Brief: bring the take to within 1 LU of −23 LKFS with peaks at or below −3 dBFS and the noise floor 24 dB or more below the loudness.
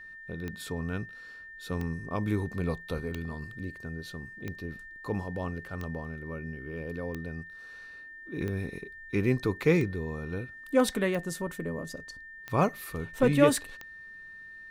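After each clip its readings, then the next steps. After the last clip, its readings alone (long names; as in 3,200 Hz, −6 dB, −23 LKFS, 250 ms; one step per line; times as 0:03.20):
number of clicks 11; interfering tone 1,800 Hz; level of the tone −44 dBFS; integrated loudness −31.5 LKFS; sample peak −7.5 dBFS; target loudness −23.0 LKFS
→ click removal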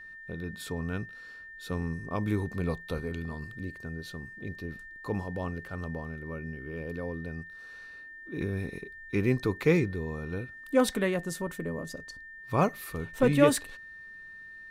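number of clicks 0; interfering tone 1,800 Hz; level of the tone −44 dBFS
→ notch filter 1,800 Hz, Q 30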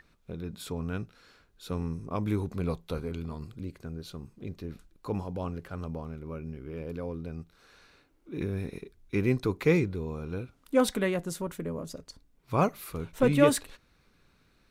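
interfering tone none found; integrated loudness −31.5 LKFS; sample peak −7.5 dBFS; target loudness −23.0 LKFS
→ level +8.5 dB
brickwall limiter −3 dBFS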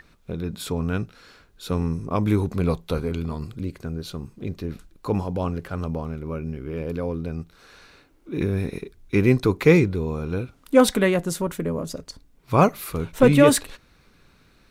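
integrated loudness −23.5 LKFS; sample peak −3.0 dBFS; background noise floor −57 dBFS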